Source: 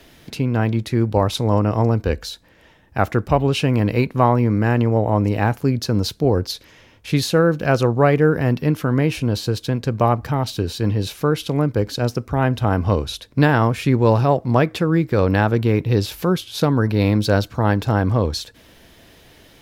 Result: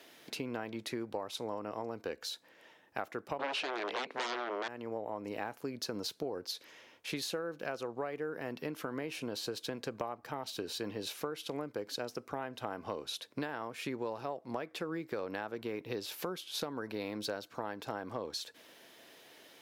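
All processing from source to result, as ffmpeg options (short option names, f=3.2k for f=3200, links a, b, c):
-filter_complex "[0:a]asettb=1/sr,asplit=3[a][b][c];[a]atrim=end=3.394[d];[b]atrim=start=3.39:end=4.68,asetpts=PTS-STARTPTS,afade=t=in:d=0.004:c=qsin,afade=t=out:st=1.286:d=0.004:c=qsin,aeval=exprs='0.794*sin(PI/2*7.94*val(0)/0.794)':c=same,highpass=360,lowpass=4.6k[e];[c]atrim=start=4.676[f];[d][e]acrossfade=d=0.004:c1=hsin:c2=qsin[g];[g][f]acrossfade=d=0.004:c1=qsin:c2=hsin,highpass=350,acompressor=threshold=-27dB:ratio=12,volume=-7dB"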